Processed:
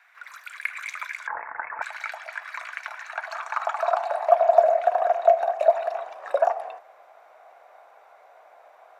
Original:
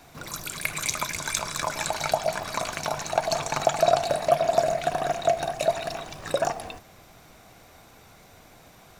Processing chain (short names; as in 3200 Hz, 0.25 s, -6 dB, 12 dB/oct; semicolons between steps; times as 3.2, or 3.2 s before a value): high-pass sweep 1800 Hz -> 620 Hz, 2.96–4.65; 1.27–1.82 inverted band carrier 3200 Hz; three-band isolator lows -18 dB, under 490 Hz, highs -20 dB, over 2100 Hz